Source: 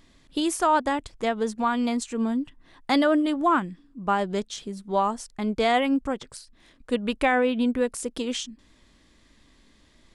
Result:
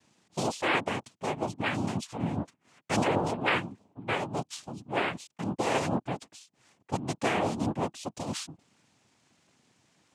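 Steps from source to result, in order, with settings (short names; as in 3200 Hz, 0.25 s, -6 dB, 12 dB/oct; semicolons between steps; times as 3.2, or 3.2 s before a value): noise vocoder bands 4; gain -6 dB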